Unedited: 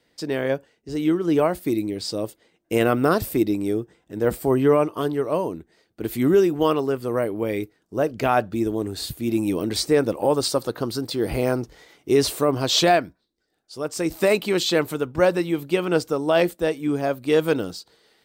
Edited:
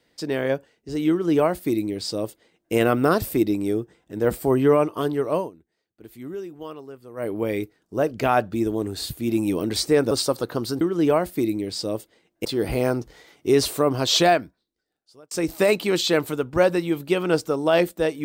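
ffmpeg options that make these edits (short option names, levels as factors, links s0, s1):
-filter_complex "[0:a]asplit=7[s0][s1][s2][s3][s4][s5][s6];[s0]atrim=end=5.51,asetpts=PTS-STARTPTS,afade=t=out:st=5.38:d=0.13:silence=0.149624[s7];[s1]atrim=start=5.51:end=7.16,asetpts=PTS-STARTPTS,volume=0.15[s8];[s2]atrim=start=7.16:end=10.112,asetpts=PTS-STARTPTS,afade=t=in:d=0.13:silence=0.149624[s9];[s3]atrim=start=10.368:end=11.072[s10];[s4]atrim=start=1.098:end=2.742[s11];[s5]atrim=start=11.068:end=13.93,asetpts=PTS-STARTPTS,afade=t=out:st=1.842:d=1.02[s12];[s6]atrim=start=13.93,asetpts=PTS-STARTPTS,afade=t=in:d=0.004:c=hsin[s13];[s7][s8][s9]concat=n=3:v=0:a=1[s14];[s14][s10]acrossfade=d=0.004:c1=hsin:c2=hsin[s15];[s15][s11]acrossfade=d=0.004:c1=hsin:c2=hsin[s16];[s12][s13]concat=n=2:v=0:a=1[s17];[s16][s17]acrossfade=d=0.004:c1=hsin:c2=hsin"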